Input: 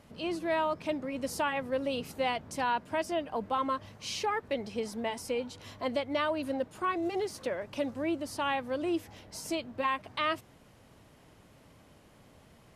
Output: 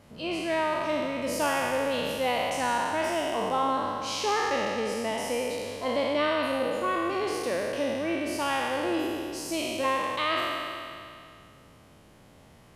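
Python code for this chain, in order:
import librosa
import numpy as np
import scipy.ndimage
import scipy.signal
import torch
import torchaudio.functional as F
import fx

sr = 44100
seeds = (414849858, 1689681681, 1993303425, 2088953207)

y = fx.spec_trails(x, sr, decay_s=2.38)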